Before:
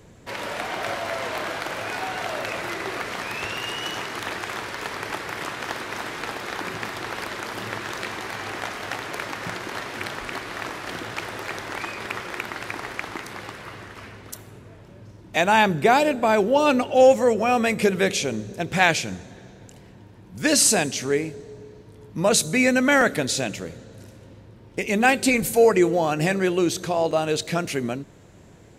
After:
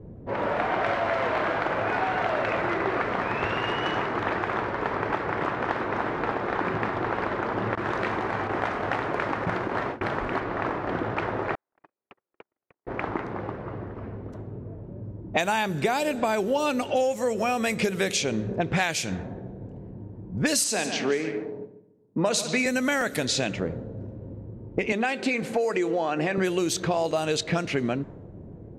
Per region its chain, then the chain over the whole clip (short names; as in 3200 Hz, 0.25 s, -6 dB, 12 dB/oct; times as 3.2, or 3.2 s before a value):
7.75–10.4 gate with hold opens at -21 dBFS, closes at -29 dBFS + high shelf 8800 Hz +10.5 dB
11.55–12.87 HPF 1200 Hz 6 dB/oct + gate -30 dBFS, range -51 dB
20.64–22.66 gate with hold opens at -32 dBFS, closes at -38 dBFS + three-band isolator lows -23 dB, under 170 Hz, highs -14 dB, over 6800 Hz + multi-head echo 72 ms, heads first and second, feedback 43%, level -14 dB
24.92–26.38 HPF 240 Hz + compressor 2:1, threshold -25 dBFS
whole clip: low-pass opened by the level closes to 410 Hz, open at -17 dBFS; high shelf 4700 Hz +7 dB; compressor 12:1, threshold -29 dBFS; gain +7.5 dB